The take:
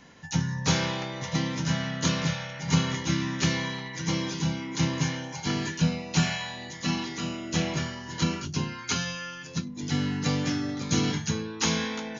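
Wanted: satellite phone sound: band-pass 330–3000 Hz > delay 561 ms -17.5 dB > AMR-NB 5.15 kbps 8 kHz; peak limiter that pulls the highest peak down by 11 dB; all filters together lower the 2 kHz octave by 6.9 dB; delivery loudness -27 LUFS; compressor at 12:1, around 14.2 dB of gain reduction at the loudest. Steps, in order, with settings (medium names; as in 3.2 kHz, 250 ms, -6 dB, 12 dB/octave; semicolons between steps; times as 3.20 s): peaking EQ 2 kHz -7.5 dB; compression 12:1, threshold -33 dBFS; peak limiter -32 dBFS; band-pass 330–3000 Hz; delay 561 ms -17.5 dB; trim +22.5 dB; AMR-NB 5.15 kbps 8 kHz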